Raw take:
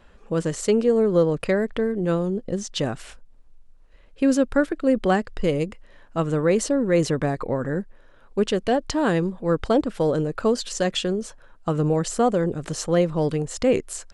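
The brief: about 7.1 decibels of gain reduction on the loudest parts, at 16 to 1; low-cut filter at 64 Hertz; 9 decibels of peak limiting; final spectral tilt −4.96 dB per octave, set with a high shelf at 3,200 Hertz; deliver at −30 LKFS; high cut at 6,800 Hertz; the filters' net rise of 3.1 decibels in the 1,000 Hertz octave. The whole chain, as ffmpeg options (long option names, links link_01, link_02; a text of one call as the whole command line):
ffmpeg -i in.wav -af "highpass=64,lowpass=6800,equalizer=frequency=1000:width_type=o:gain=4,highshelf=frequency=3200:gain=5.5,acompressor=threshold=-20dB:ratio=16,volume=-1.5dB,alimiter=limit=-20.5dB:level=0:latency=1" out.wav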